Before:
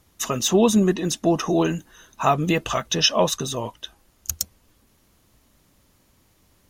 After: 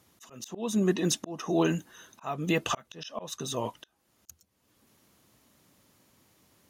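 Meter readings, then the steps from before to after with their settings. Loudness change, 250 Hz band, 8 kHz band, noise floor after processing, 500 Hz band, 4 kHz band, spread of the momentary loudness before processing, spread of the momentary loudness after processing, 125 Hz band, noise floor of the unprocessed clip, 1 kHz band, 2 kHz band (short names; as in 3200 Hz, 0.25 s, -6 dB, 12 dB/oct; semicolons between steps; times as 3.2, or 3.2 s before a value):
-9.0 dB, -8.0 dB, -10.5 dB, -74 dBFS, -10.0 dB, -13.0 dB, 13 LU, 14 LU, -8.0 dB, -62 dBFS, -11.5 dB, -7.5 dB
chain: HPF 120 Hz 12 dB/oct; auto swell 0.481 s; gain -2 dB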